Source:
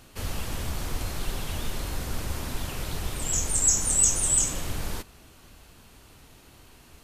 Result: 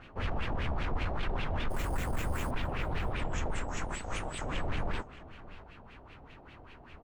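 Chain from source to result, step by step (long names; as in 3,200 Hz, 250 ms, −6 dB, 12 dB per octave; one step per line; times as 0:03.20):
0:03.77–0:04.46: high-shelf EQ 4,800 Hz +7.5 dB
soft clipping −23.5 dBFS, distortion −6 dB
auto-filter low-pass sine 5.1 Hz 680–2,700 Hz
0:01.70–0:02.51: sample-rate reduction 9,600 Hz, jitter 0%
single-tap delay 619 ms −18.5 dB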